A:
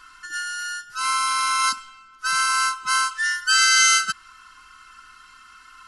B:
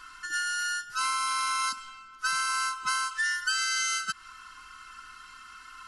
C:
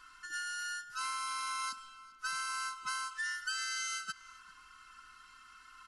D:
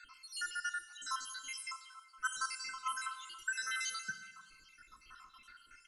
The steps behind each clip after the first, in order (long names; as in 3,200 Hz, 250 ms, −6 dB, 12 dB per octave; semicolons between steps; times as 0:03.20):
downward compressor 16 to 1, threshold −25 dBFS, peak gain reduction 13.5 dB
slap from a distant wall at 68 metres, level −18 dB; level −9 dB
time-frequency cells dropped at random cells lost 74%; dense smooth reverb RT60 1.4 s, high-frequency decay 0.85×, DRR 8.5 dB; level +4 dB